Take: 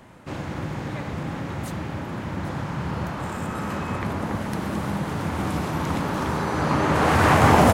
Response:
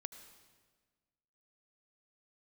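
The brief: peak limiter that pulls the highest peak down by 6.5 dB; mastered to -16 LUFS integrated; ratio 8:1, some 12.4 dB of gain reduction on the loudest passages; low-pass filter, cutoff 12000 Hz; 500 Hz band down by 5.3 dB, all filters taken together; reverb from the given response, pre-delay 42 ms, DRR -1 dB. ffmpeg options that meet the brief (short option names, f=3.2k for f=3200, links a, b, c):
-filter_complex "[0:a]lowpass=12k,equalizer=f=500:t=o:g=-7,acompressor=threshold=-26dB:ratio=8,alimiter=limit=-23dB:level=0:latency=1,asplit=2[a][b];[1:a]atrim=start_sample=2205,adelay=42[c];[b][c]afir=irnorm=-1:irlink=0,volume=4.5dB[d];[a][d]amix=inputs=2:normalize=0,volume=13.5dB"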